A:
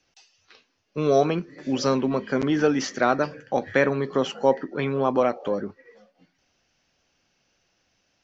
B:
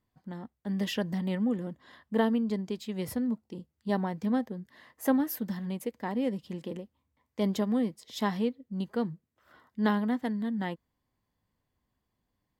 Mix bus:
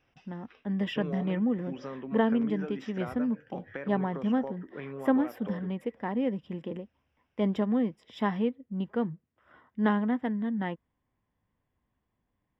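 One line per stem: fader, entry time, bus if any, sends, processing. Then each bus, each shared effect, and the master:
0.0 dB, 0.00 s, no send, compressor 6:1, threshold -27 dBFS, peak gain reduction 13.5 dB; auto duck -9 dB, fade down 1.10 s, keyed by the second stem
+1.0 dB, 0.00 s, no send, dry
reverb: off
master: polynomial smoothing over 25 samples

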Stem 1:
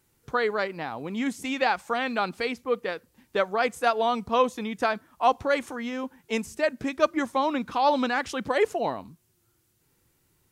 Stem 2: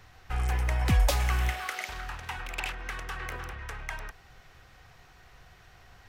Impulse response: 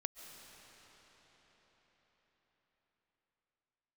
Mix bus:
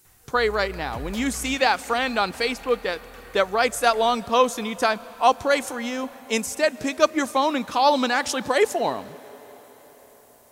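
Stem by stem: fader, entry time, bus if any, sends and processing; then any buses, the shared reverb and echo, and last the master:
+2.0 dB, 0.00 s, send -9.5 dB, tone controls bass -3 dB, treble +10 dB
-3.0 dB, 0.05 s, send -13.5 dB, soft clip -21 dBFS, distortion -15 dB; auto duck -10 dB, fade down 0.30 s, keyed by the first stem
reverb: on, RT60 5.4 s, pre-delay 0.1 s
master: dry

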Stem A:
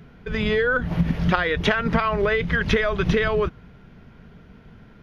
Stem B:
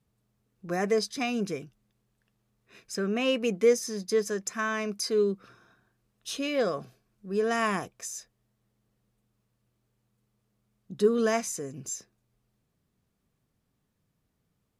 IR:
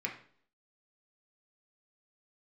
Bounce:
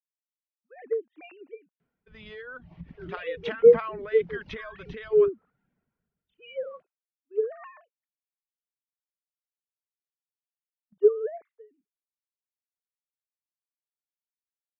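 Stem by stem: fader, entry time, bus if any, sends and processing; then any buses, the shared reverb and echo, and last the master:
-15.5 dB, 1.80 s, no send, reverb removal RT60 0.69 s; LPF 3700 Hz 12 dB/oct; low shelf 110 Hz -11.5 dB
-3.5 dB, 0.00 s, no send, sine-wave speech; expander -43 dBFS; treble ducked by the level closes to 980 Hz, closed at -26.5 dBFS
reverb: off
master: three-band expander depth 70%

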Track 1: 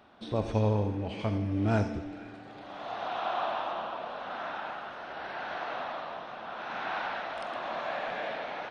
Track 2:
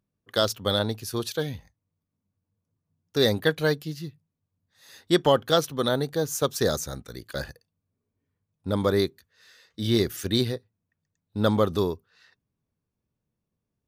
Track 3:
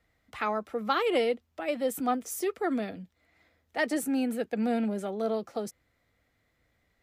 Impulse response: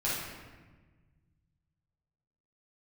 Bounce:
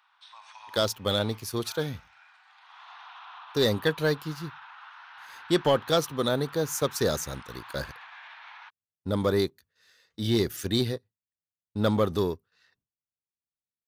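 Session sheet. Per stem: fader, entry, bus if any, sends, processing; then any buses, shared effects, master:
-3.0 dB, 0.00 s, no send, elliptic high-pass 930 Hz, stop band 50 dB; limiter -35 dBFS, peak gain reduction 10.5 dB
-5.0 dB, 0.40 s, no send, gate with hold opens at -55 dBFS; sample leveller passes 1
off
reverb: off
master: dry

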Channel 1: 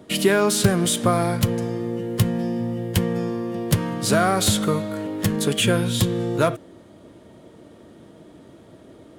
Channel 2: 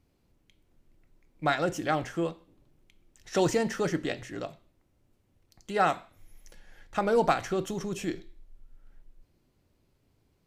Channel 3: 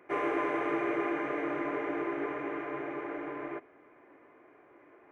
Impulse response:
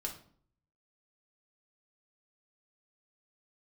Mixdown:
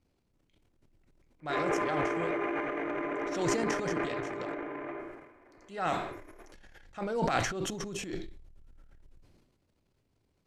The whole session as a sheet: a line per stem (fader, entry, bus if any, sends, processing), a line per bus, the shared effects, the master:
off
-7.0 dB, 0.00 s, send -21.5 dB, dry
-4.5 dB, 1.40 s, send -6 dB, dry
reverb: on, RT60 0.55 s, pre-delay 3 ms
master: LPF 10000 Hz 12 dB/oct; transient shaper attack -8 dB, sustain +12 dB; sustainer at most 63 dB/s

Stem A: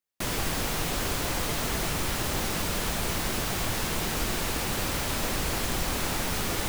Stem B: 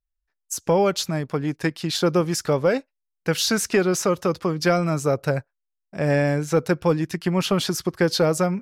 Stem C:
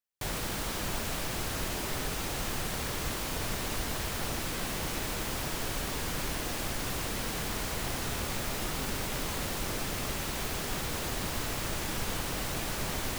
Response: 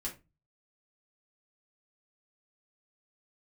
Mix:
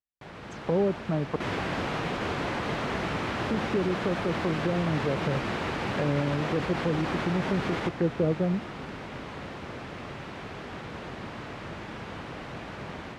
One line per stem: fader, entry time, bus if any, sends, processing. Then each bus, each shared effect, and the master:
-3.5 dB, 1.20 s, bus A, no send, dry
-7.0 dB, 0.00 s, muted 1.36–3.39, bus A, no send, treble ducked by the level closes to 420 Hz, closed at -18 dBFS
-7.5 dB, 0.00 s, no bus, no send, octaver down 2 oct, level +1 dB
bus A: 0.0 dB, limiter -22 dBFS, peak gain reduction 6.5 dB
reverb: off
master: AGC gain up to 5.5 dB; BPF 110–2400 Hz

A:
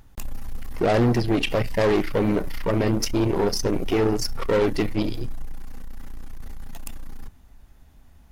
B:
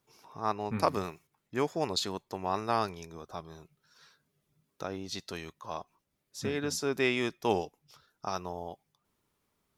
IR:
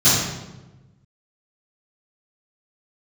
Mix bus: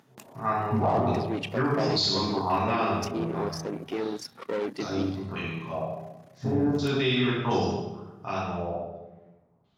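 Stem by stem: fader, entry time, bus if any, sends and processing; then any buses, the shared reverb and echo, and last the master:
-0.5 dB, 0.00 s, no send, HPF 170 Hz 24 dB/oct; high shelf 10000 Hz -9.5 dB; auto duck -9 dB, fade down 0.35 s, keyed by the second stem
-4.0 dB, 0.00 s, send -15 dB, stepped low-pass 2.8 Hz 600–4800 Hz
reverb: on, RT60 1.1 s, pre-delay 3 ms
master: limiter -16 dBFS, peak gain reduction 8.5 dB

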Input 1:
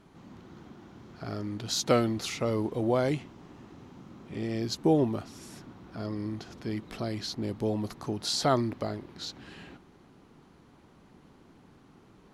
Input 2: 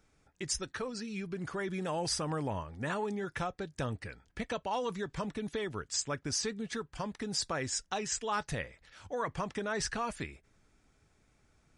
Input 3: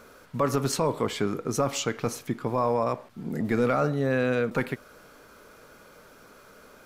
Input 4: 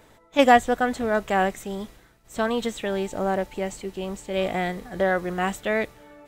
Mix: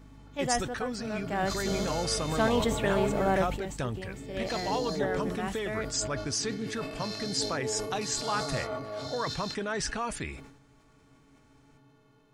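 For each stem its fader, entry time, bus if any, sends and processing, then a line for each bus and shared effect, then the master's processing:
-4.5 dB, 0.00 s, no send, spectral dilation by 0.48 s; vocal rider within 3 dB; metallic resonator 130 Hz, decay 0.23 s, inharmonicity 0.03
+2.0 dB, 0.00 s, no send, dry
off
1.21 s -15 dB -> 1.61 s -2 dB -> 3.42 s -2 dB -> 3.63 s -11.5 dB, 0.00 s, no send, hum 50 Hz, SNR 13 dB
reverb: off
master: sustainer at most 71 dB/s

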